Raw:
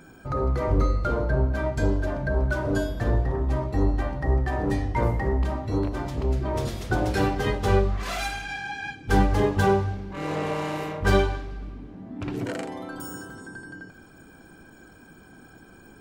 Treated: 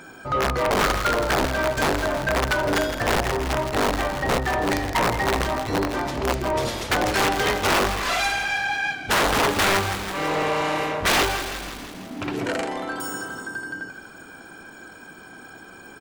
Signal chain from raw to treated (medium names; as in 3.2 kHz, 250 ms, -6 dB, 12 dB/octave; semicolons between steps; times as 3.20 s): integer overflow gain 16.5 dB; frequency-shifting echo 163 ms, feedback 63%, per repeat -36 Hz, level -15 dB; overdrive pedal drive 16 dB, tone 7.5 kHz, clips at -13 dBFS